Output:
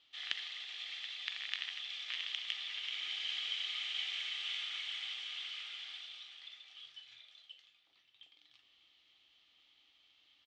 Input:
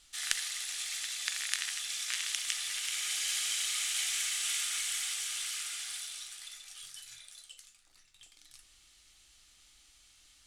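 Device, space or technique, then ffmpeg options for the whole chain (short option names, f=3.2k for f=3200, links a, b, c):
kitchen radio: -af "highpass=170,equalizer=f=180:t=q:w=4:g=-7,equalizer=f=1.5k:t=q:w=4:g=-7,equalizer=f=3.2k:t=q:w=4:g=7,lowpass=f=3.7k:w=0.5412,lowpass=f=3.7k:w=1.3066,aecho=1:1:581|1162|1743|2324:0.0944|0.0491|0.0255|0.0133,volume=-4.5dB"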